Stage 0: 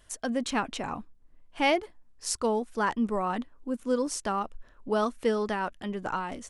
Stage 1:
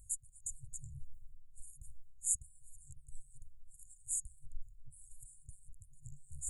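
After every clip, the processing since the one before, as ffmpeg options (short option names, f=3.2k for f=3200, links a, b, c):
-af "areverse,acompressor=mode=upward:threshold=-31dB:ratio=2.5,areverse,equalizer=f=1.3k:w=2:g=-8.5,afftfilt=real='re*(1-between(b*sr/4096,150,6700))':imag='im*(1-between(b*sr/4096,150,6700))':win_size=4096:overlap=0.75,volume=1dB"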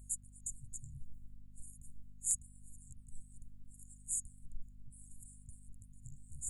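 -af "asoftclip=type=hard:threshold=-19.5dB,bass=f=250:g=-8,treble=f=4k:g=-7,aeval=exprs='val(0)+0.000631*(sin(2*PI*50*n/s)+sin(2*PI*2*50*n/s)/2+sin(2*PI*3*50*n/s)/3+sin(2*PI*4*50*n/s)/4+sin(2*PI*5*50*n/s)/5)':c=same,volume=6.5dB"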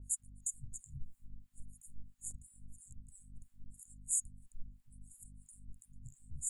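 -filter_complex "[0:a]acrossover=split=580[a][b];[a]aeval=exprs='val(0)*(1-1/2+1/2*cos(2*PI*3*n/s))':c=same[c];[b]aeval=exprs='val(0)*(1-1/2-1/2*cos(2*PI*3*n/s))':c=same[d];[c][d]amix=inputs=2:normalize=0,volume=4.5dB"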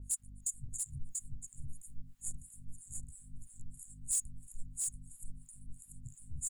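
-af "asoftclip=type=tanh:threshold=-29dB,aecho=1:1:687:0.668,volume=3.5dB"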